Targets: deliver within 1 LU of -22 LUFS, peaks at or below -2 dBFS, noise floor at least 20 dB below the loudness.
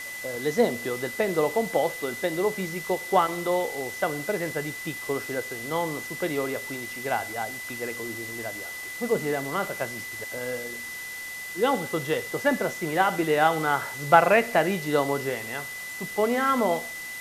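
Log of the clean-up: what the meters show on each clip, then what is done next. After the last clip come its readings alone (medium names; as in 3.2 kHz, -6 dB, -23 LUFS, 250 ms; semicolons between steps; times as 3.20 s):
steady tone 2 kHz; tone level -35 dBFS; noise floor -37 dBFS; noise floor target -47 dBFS; loudness -26.5 LUFS; peak level -3.5 dBFS; loudness target -22.0 LUFS
-> band-stop 2 kHz, Q 30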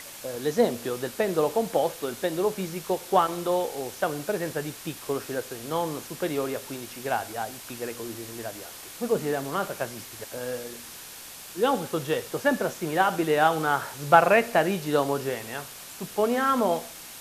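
steady tone not found; noise floor -43 dBFS; noise floor target -47 dBFS
-> noise reduction 6 dB, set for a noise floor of -43 dBFS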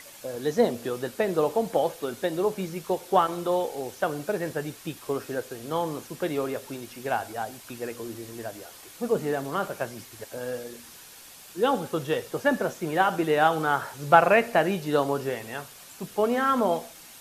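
noise floor -48 dBFS; loudness -27.0 LUFS; peak level -4.0 dBFS; loudness target -22.0 LUFS
-> trim +5 dB; peak limiter -2 dBFS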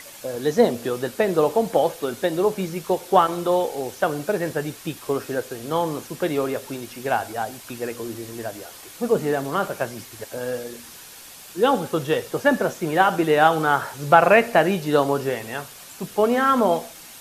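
loudness -22.0 LUFS; peak level -2.0 dBFS; noise floor -43 dBFS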